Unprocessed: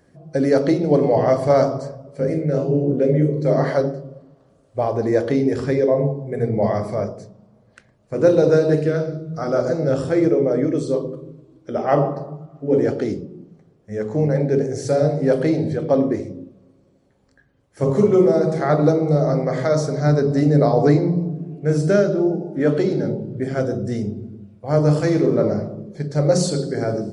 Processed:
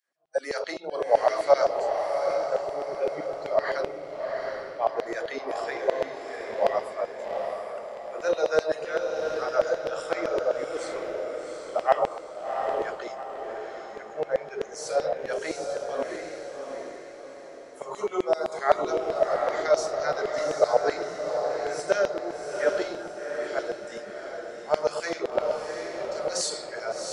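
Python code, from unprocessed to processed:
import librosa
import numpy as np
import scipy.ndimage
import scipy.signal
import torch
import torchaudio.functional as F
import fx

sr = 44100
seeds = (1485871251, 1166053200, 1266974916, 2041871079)

p1 = fx.noise_reduce_blind(x, sr, reduce_db=16)
p2 = fx.dynamic_eq(p1, sr, hz=590.0, q=1.5, threshold_db=-27.0, ratio=4.0, max_db=5)
p3 = fx.filter_lfo_highpass(p2, sr, shape='saw_down', hz=7.8, low_hz=600.0, high_hz=3100.0, q=1.1)
p4 = p3 + fx.echo_diffused(p3, sr, ms=751, feedback_pct=48, wet_db=-4.5, dry=0)
y = p4 * 10.0 ** (-2.5 / 20.0)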